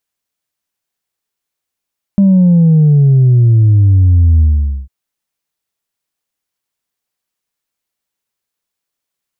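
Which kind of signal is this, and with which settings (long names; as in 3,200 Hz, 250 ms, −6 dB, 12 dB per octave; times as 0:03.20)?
bass drop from 200 Hz, over 2.70 s, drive 1 dB, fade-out 0.47 s, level −5 dB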